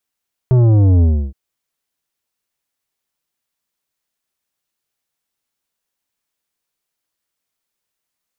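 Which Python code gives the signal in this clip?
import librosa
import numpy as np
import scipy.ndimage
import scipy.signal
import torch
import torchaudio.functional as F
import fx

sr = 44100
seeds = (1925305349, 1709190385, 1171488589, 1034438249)

y = fx.sub_drop(sr, level_db=-9, start_hz=130.0, length_s=0.82, drive_db=10.5, fade_s=0.31, end_hz=65.0)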